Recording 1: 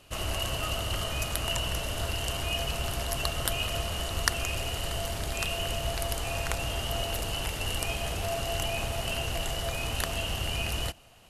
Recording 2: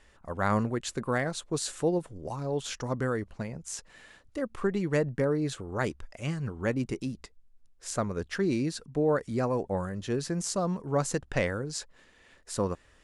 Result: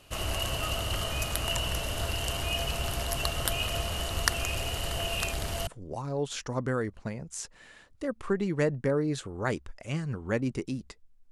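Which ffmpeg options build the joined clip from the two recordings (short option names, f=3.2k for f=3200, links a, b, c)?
-filter_complex "[0:a]apad=whole_dur=11.31,atrim=end=11.31,asplit=2[a][b];[a]atrim=end=4.992[c];[b]atrim=start=4.988:end=5.672,asetpts=PTS-STARTPTS,areverse[d];[1:a]atrim=start=2.008:end=7.65[e];[c][d]acrossfade=d=0.004:c1=hsin:c2=hsin[f];[f][e]acrossfade=d=0.004:c1=hsin:c2=hsin"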